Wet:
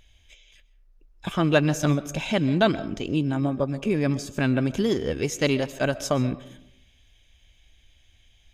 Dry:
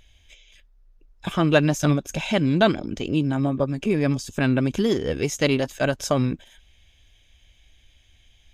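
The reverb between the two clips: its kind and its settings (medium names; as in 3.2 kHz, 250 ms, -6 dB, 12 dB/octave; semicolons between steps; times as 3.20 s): algorithmic reverb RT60 0.76 s, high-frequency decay 0.4×, pre-delay 90 ms, DRR 16.5 dB; trim -2 dB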